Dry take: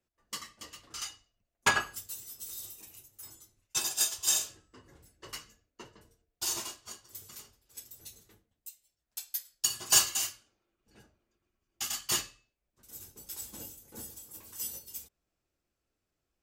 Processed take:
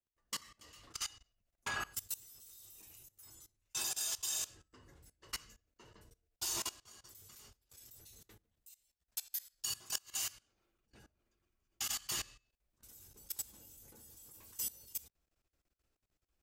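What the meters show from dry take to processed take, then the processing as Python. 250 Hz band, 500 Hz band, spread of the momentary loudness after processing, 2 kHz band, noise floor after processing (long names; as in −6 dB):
−9.0 dB, −10.5 dB, 20 LU, −10.5 dB, below −85 dBFS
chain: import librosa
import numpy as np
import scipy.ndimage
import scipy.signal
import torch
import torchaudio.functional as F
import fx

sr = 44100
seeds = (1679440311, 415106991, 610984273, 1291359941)

y = fx.low_shelf(x, sr, hz=120.0, db=10.5)
y = fx.level_steps(y, sr, step_db=20)
y = fx.gate_flip(y, sr, shuts_db=-21.0, range_db=-32)
y = fx.low_shelf(y, sr, hz=450.0, db=-5.0)
y = y * 10.0 ** (3.0 / 20.0)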